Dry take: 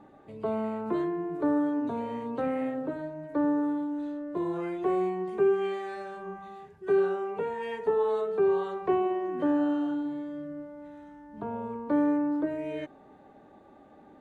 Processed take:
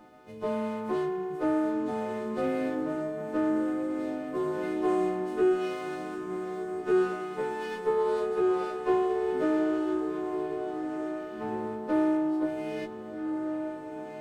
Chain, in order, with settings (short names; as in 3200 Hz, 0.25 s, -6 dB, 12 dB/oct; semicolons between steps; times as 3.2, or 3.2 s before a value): frequency quantiser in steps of 3 st; diffused feedback echo 1.518 s, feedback 41%, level -6 dB; running maximum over 5 samples